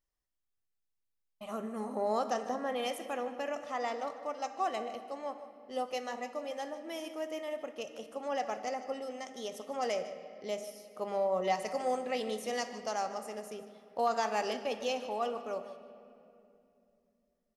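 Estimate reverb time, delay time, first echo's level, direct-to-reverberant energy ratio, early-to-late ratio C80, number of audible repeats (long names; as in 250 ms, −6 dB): 2.8 s, 151 ms, −15.5 dB, 9.0 dB, 10.5 dB, 1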